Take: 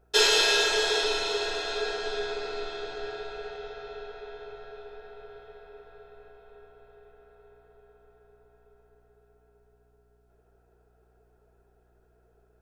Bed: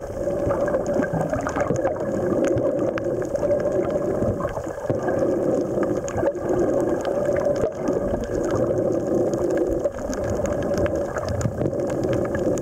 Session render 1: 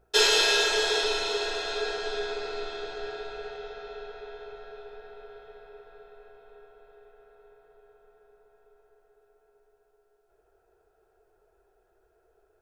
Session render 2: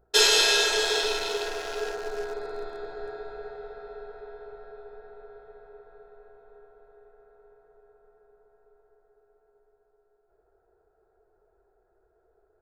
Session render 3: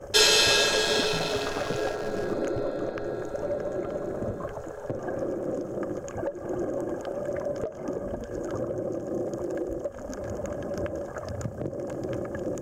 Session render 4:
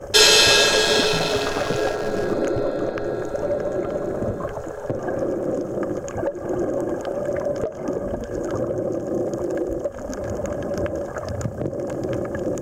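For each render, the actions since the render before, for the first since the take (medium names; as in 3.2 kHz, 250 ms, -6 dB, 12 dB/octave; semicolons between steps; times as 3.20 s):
de-hum 60 Hz, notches 5
local Wiener filter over 15 samples; treble shelf 5.5 kHz +8 dB
add bed -9.5 dB
trim +6.5 dB; peak limiter -1 dBFS, peak gain reduction 1 dB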